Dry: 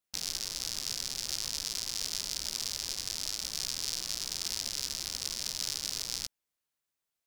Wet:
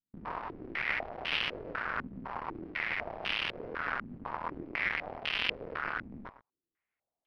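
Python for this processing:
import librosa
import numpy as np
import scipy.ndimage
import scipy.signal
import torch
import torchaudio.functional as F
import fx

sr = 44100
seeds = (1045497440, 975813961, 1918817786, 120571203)

p1 = fx.quant_dither(x, sr, seeds[0], bits=6, dither='none')
p2 = x + (p1 * librosa.db_to_amplitude(-1.5))
p3 = fx.chorus_voices(p2, sr, voices=2, hz=0.46, base_ms=26, depth_ms=1.7, mix_pct=50)
p4 = p3 + fx.echo_single(p3, sr, ms=118, db=-19.0, dry=0)
p5 = np.repeat(p4[::6], 6)[:len(p4)]
p6 = fx.filter_held_lowpass(p5, sr, hz=4.0, low_hz=230.0, high_hz=3000.0)
y = p6 * librosa.db_to_amplitude(-4.5)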